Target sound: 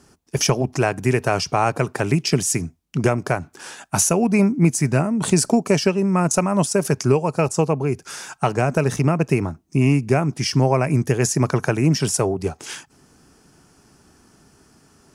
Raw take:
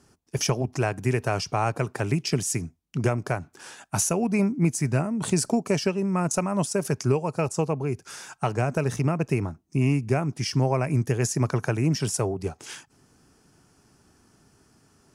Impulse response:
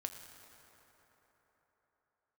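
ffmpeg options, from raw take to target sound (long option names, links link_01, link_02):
-af "equalizer=frequency=110:width_type=o:width=0.31:gain=-6,volume=6.5dB"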